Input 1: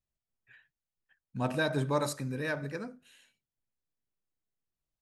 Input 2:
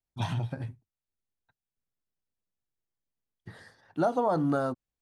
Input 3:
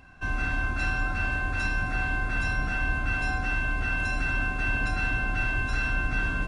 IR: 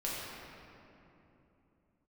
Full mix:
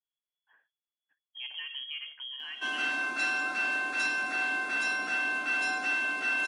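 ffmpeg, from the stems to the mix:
-filter_complex "[0:a]volume=-7.5dB[link_01];[2:a]highpass=frequency=280:width=0.5412,highpass=frequency=280:width=1.3066,adelay=2400,volume=-2dB[link_02];[link_01]lowpass=frequency=2900:width_type=q:width=0.5098,lowpass=frequency=2900:width_type=q:width=0.6013,lowpass=frequency=2900:width_type=q:width=0.9,lowpass=frequency=2900:width_type=q:width=2.563,afreqshift=-3400,acompressor=threshold=-40dB:ratio=6,volume=0dB[link_03];[link_02][link_03]amix=inputs=2:normalize=0,highpass=150,adynamicequalizer=threshold=0.00501:dfrequency=2100:dqfactor=0.7:tfrequency=2100:tqfactor=0.7:attack=5:release=100:ratio=0.375:range=3.5:mode=boostabove:tftype=highshelf"

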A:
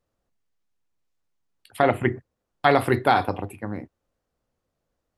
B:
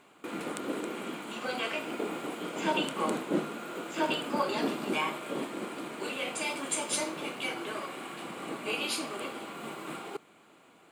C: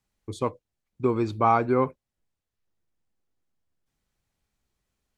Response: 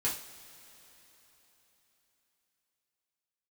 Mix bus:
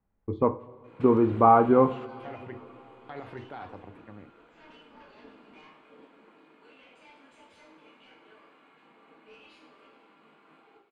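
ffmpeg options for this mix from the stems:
-filter_complex "[0:a]alimiter=limit=-13.5dB:level=0:latency=1:release=64,adelay=450,volume=-16dB[link_01];[1:a]highpass=frequency=300:poles=1,aeval=exprs='0.141*sin(PI/2*3.16*val(0)/0.141)':channel_layout=same,flanger=delay=9.7:depth=3.9:regen=-87:speed=2:shape=triangular,adelay=600,volume=-16.5dB,asplit=2[link_02][link_03];[link_03]volume=-15dB[link_04];[2:a]lowpass=1200,volume=2dB,asplit=3[link_05][link_06][link_07];[link_06]volume=-11dB[link_08];[link_07]apad=whole_len=507781[link_09];[link_02][link_09]sidechaingate=range=-33dB:threshold=-45dB:ratio=16:detection=peak[link_10];[3:a]atrim=start_sample=2205[link_11];[link_04][link_08]amix=inputs=2:normalize=0[link_12];[link_12][link_11]afir=irnorm=-1:irlink=0[link_13];[link_01][link_10][link_05][link_13]amix=inputs=4:normalize=0,lowpass=3000"

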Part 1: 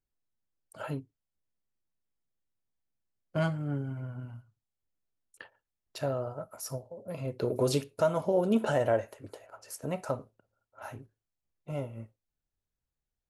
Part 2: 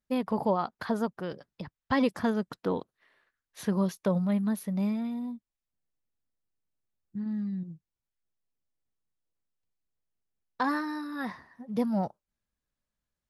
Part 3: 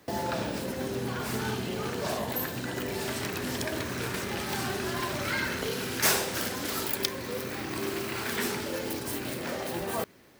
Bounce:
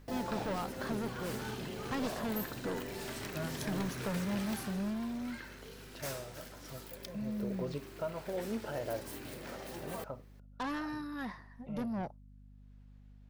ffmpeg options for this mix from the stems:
ffmpeg -i stem1.wav -i stem2.wav -i stem3.wav -filter_complex "[0:a]lowpass=3200,acompressor=mode=upward:threshold=-34dB:ratio=2.5,volume=-11.5dB[link_01];[1:a]asoftclip=type=tanh:threshold=-29.5dB,aeval=exprs='val(0)+0.00282*(sin(2*PI*50*n/s)+sin(2*PI*2*50*n/s)/2+sin(2*PI*3*50*n/s)/3+sin(2*PI*4*50*n/s)/4+sin(2*PI*5*50*n/s)/5)':channel_layout=same,volume=-3.5dB[link_02];[2:a]volume=-1.5dB,afade=type=out:start_time=4.42:duration=0.53:silence=0.316228,afade=type=in:start_time=8.35:duration=0.66:silence=0.421697[link_03];[link_01][link_02][link_03]amix=inputs=3:normalize=0" out.wav

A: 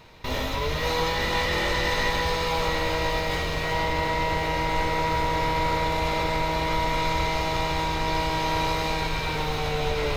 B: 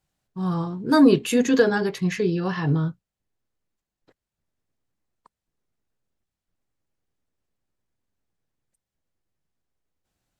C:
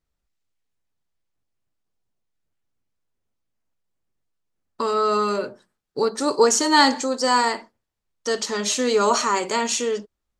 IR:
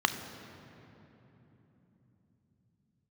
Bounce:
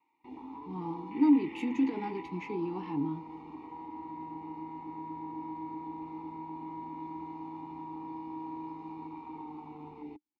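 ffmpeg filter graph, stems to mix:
-filter_complex "[0:a]afwtdn=0.0501,equalizer=frequency=160:width_type=o:width=2:gain=-5.5,acrossover=split=360|3000[link_01][link_02][link_03];[link_02]acompressor=threshold=-40dB:ratio=6[link_04];[link_01][link_04][link_03]amix=inputs=3:normalize=0,volume=-1dB,asplit=2[link_05][link_06];[link_06]volume=-10dB[link_07];[1:a]alimiter=limit=-14.5dB:level=0:latency=1:release=62,adelay=300,volume=2.5dB[link_08];[3:a]atrim=start_sample=2205[link_09];[link_07][link_09]afir=irnorm=-1:irlink=0[link_10];[link_05][link_08][link_10]amix=inputs=3:normalize=0,asplit=3[link_11][link_12][link_13];[link_11]bandpass=frequency=300:width_type=q:width=8,volume=0dB[link_14];[link_12]bandpass=frequency=870:width_type=q:width=8,volume=-6dB[link_15];[link_13]bandpass=frequency=2240:width_type=q:width=8,volume=-9dB[link_16];[link_14][link_15][link_16]amix=inputs=3:normalize=0,lowshelf=frequency=63:gain=-10"

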